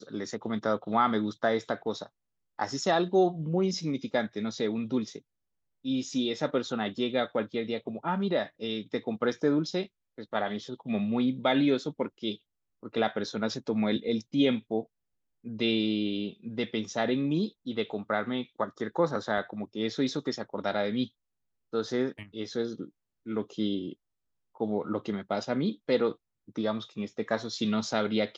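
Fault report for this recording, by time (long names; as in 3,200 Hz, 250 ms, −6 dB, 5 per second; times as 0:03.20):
0:19.38: drop-out 2.1 ms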